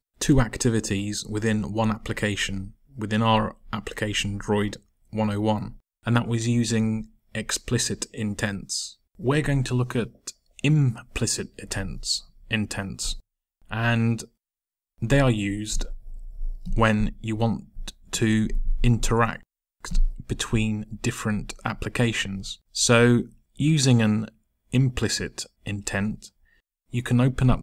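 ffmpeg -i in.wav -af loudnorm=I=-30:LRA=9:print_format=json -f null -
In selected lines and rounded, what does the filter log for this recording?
"input_i" : "-25.1",
"input_tp" : "-5.1",
"input_lra" : "4.8",
"input_thresh" : "-35.7",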